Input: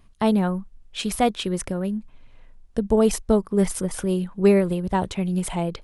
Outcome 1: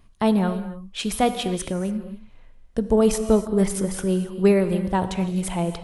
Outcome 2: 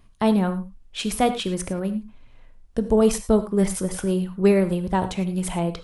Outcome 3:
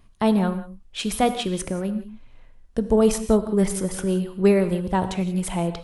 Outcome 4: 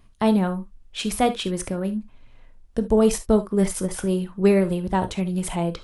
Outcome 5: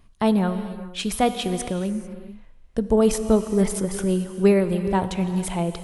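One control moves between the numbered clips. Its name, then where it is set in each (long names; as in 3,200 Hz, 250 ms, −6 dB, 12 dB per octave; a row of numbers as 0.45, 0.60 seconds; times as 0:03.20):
reverb whose tail is shaped and stops, gate: 310, 130, 210, 90, 470 milliseconds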